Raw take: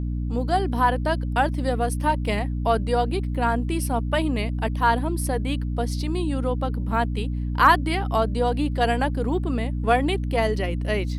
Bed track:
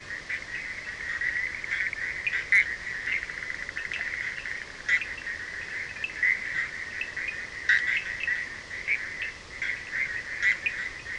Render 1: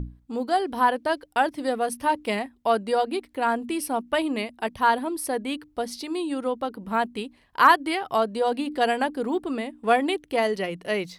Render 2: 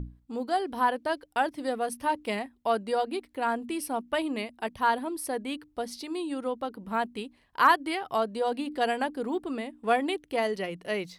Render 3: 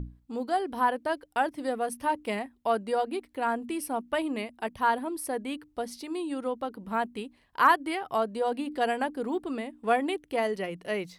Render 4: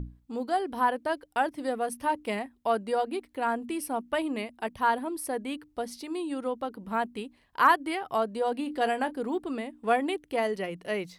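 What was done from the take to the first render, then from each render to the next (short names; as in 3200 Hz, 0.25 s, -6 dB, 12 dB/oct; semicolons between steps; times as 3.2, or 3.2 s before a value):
notches 60/120/180/240/300 Hz
gain -4.5 dB
dynamic EQ 4200 Hz, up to -5 dB, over -49 dBFS, Q 1.3
8.56–9.15 doubler 27 ms -13 dB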